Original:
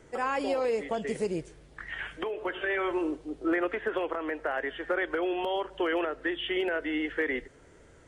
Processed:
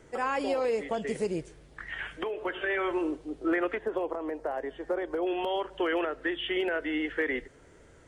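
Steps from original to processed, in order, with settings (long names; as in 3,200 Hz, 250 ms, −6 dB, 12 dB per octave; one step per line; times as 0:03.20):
0:03.78–0:05.27: flat-topped bell 2,100 Hz −11.5 dB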